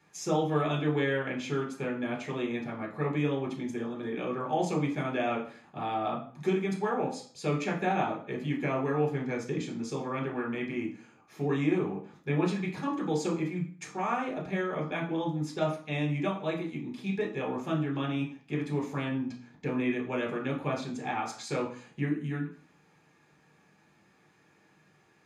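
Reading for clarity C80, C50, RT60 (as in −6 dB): 13.5 dB, 9.0 dB, 0.45 s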